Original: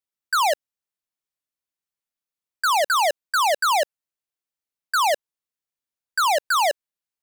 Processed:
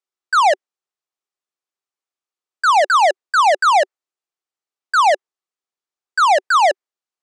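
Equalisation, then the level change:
dynamic equaliser 1,900 Hz, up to +6 dB, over −38 dBFS, Q 2.5
dynamic equaliser 580 Hz, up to +4 dB, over −32 dBFS, Q 0.77
loudspeaker in its box 290–8,500 Hz, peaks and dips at 380 Hz +8 dB, 770 Hz +5 dB, 1,200 Hz +6 dB
0.0 dB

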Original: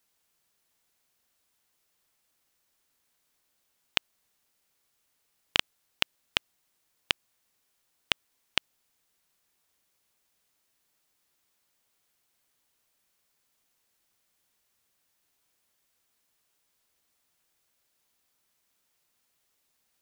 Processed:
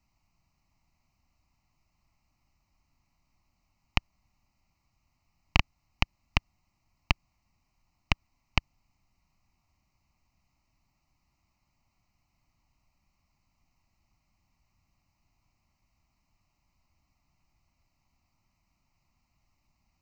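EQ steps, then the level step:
RIAA equalisation playback
notch filter 1,800 Hz, Q 9.7
phaser with its sweep stopped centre 2,300 Hz, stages 8
+6.0 dB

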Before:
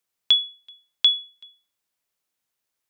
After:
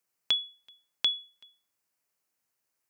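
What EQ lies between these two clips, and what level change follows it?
high-pass filter 69 Hz
parametric band 3,500 Hz −10 dB 0.38 octaves
0.0 dB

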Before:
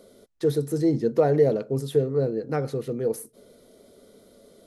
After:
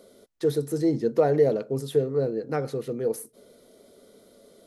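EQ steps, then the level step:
low-shelf EQ 160 Hz −6.5 dB
0.0 dB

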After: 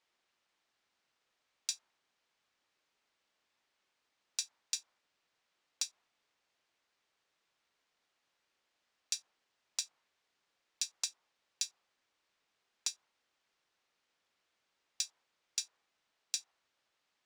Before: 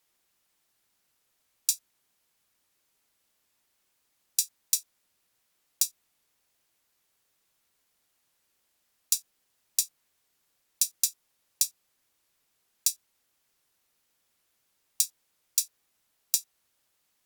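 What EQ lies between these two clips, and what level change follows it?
dynamic equaliser 930 Hz, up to +8 dB, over −60 dBFS, Q 0.96
high-frequency loss of the air 130 metres
low-shelf EQ 230 Hz −12 dB
0.0 dB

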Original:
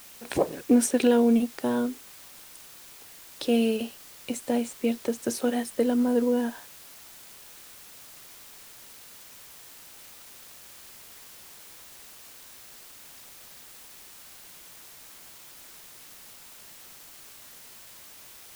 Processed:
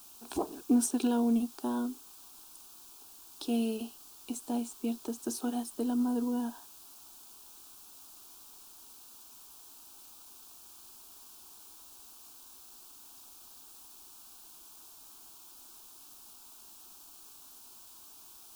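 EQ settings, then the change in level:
phaser with its sweep stopped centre 530 Hz, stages 6
−4.0 dB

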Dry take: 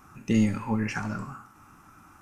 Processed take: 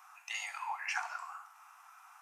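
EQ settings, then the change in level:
Chebyshev high-pass with heavy ripple 690 Hz, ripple 3 dB
0.0 dB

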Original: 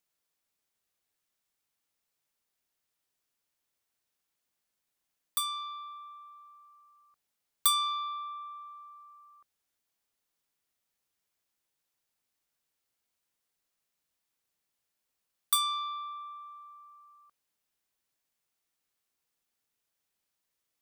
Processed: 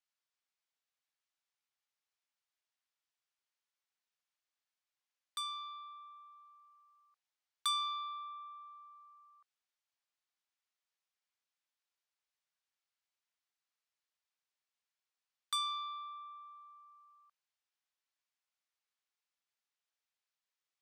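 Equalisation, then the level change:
band-pass filter 780–6,000 Hz
−5.5 dB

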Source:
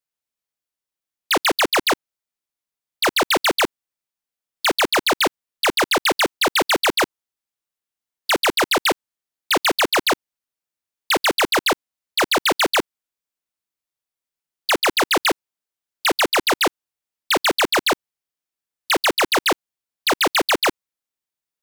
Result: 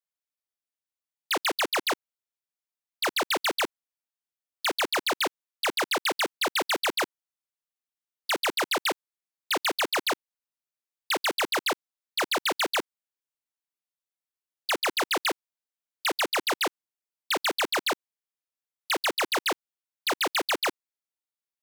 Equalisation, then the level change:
high-pass filter 280 Hz 6 dB per octave
−8.0 dB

